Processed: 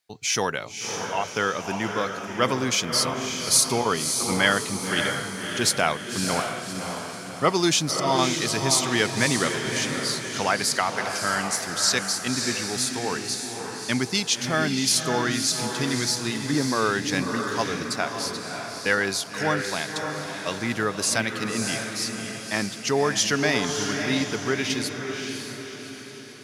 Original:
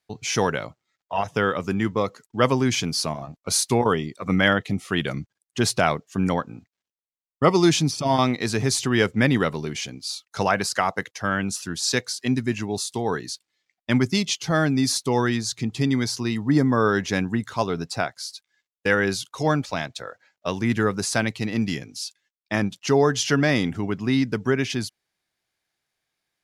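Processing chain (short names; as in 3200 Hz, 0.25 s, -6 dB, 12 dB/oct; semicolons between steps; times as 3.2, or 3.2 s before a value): tilt +2 dB/oct; diffused feedback echo 0.586 s, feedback 50%, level -5 dB; gain -2 dB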